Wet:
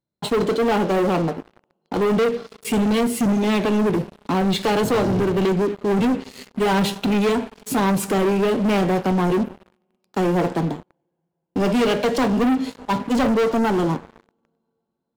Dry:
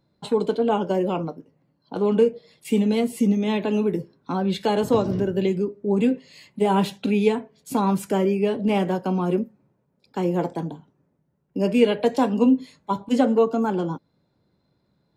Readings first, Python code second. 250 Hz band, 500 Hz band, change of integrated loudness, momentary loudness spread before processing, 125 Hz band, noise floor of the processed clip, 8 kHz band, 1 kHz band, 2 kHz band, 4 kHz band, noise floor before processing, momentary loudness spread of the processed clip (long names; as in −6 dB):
+2.0 dB, +1.5 dB, +2.0 dB, 10 LU, +3.5 dB, −77 dBFS, +8.5 dB, +3.5 dB, +7.5 dB, +6.0 dB, −70 dBFS, 7 LU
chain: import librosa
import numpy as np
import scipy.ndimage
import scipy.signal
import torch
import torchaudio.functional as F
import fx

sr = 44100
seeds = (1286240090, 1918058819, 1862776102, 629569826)

y = fx.rev_double_slope(x, sr, seeds[0], early_s=0.5, late_s=4.1, knee_db=-17, drr_db=14.5)
y = fx.leveller(y, sr, passes=5)
y = y * librosa.db_to_amplitude(-9.0)